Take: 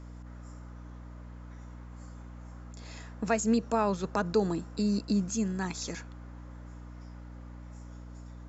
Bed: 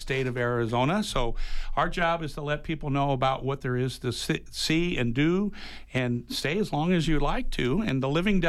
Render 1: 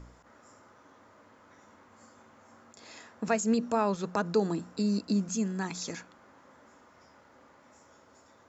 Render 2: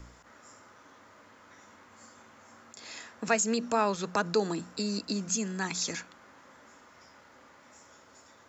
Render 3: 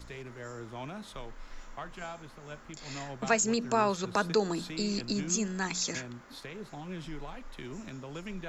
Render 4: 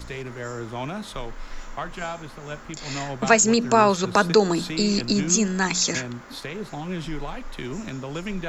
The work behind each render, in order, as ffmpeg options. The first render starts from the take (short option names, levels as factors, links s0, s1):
-af "bandreject=f=60:t=h:w=4,bandreject=f=120:t=h:w=4,bandreject=f=180:t=h:w=4,bandreject=f=240:t=h:w=4,bandreject=f=300:t=h:w=4"
-filter_complex "[0:a]acrossover=split=260|1400[s0][s1][s2];[s0]alimiter=level_in=3.76:limit=0.0631:level=0:latency=1,volume=0.266[s3];[s2]acontrast=66[s4];[s3][s1][s4]amix=inputs=3:normalize=0"
-filter_complex "[1:a]volume=0.15[s0];[0:a][s0]amix=inputs=2:normalize=0"
-af "volume=3.16"